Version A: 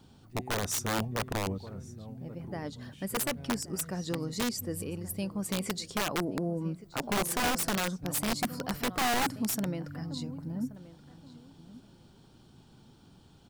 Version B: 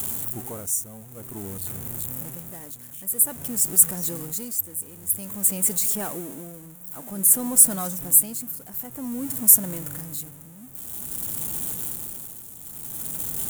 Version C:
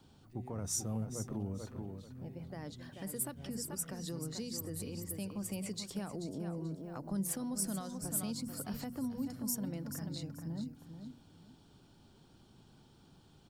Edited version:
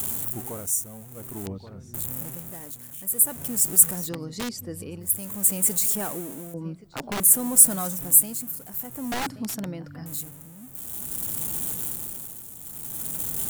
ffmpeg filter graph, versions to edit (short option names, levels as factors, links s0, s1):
-filter_complex "[0:a]asplit=4[s0][s1][s2][s3];[1:a]asplit=5[s4][s5][s6][s7][s8];[s4]atrim=end=1.462[s9];[s0]atrim=start=1.458:end=1.942[s10];[s5]atrim=start=1.938:end=4.1[s11];[s1]atrim=start=4:end=5.1[s12];[s6]atrim=start=5:end=6.542[s13];[s2]atrim=start=6.538:end=7.202[s14];[s7]atrim=start=7.198:end=9.122[s15];[s3]atrim=start=9.118:end=10.062[s16];[s8]atrim=start=10.058[s17];[s9][s10]acrossfade=d=0.004:c1=hsin:c2=hsin[s18];[s18][s11]acrossfade=d=0.004:c1=hsin:c2=hsin[s19];[s19][s12]acrossfade=d=0.1:c1=tri:c2=tri[s20];[s20][s13]acrossfade=d=0.1:c1=tri:c2=tri[s21];[s21][s14]acrossfade=d=0.004:c1=hsin:c2=hsin[s22];[s22][s15]acrossfade=d=0.004:c1=hsin:c2=hsin[s23];[s23][s16]acrossfade=d=0.004:c1=hsin:c2=hsin[s24];[s24][s17]acrossfade=d=0.004:c1=hsin:c2=hsin"